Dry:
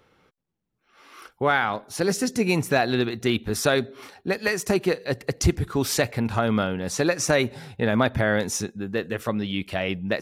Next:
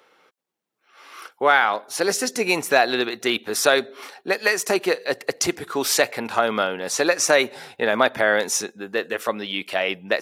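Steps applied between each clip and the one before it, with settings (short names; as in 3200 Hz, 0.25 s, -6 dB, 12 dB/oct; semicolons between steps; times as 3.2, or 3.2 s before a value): HPF 450 Hz 12 dB/oct; gain +5.5 dB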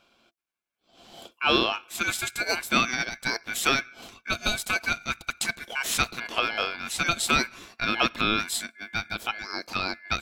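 ring modulator 1900 Hz; small resonant body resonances 230/340/680 Hz, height 7 dB, ringing for 85 ms; gain -3.5 dB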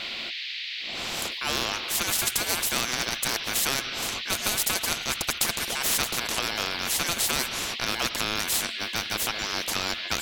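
band noise 2200–3900 Hz -45 dBFS; spectral compressor 4:1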